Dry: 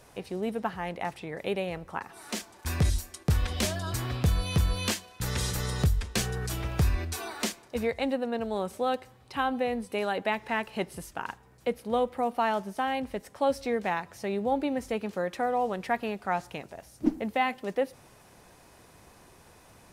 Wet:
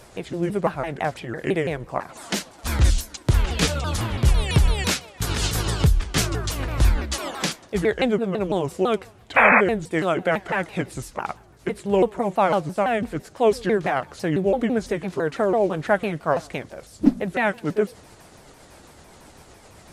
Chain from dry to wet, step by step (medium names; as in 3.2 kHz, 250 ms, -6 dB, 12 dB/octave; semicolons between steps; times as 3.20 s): sawtooth pitch modulation -6 st, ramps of 167 ms; painted sound noise, 9.36–9.61 s, 450–2600 Hz -23 dBFS; trim +8.5 dB